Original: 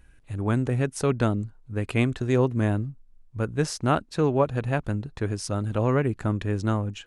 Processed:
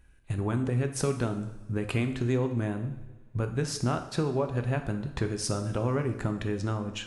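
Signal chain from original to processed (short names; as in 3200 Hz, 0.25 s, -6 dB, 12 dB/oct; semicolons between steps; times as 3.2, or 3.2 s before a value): gate -46 dBFS, range -11 dB; compressor 6:1, threshold -33 dBFS, peak gain reduction 16 dB; two-slope reverb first 0.79 s, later 2.5 s, from -19 dB, DRR 6 dB; gain +6.5 dB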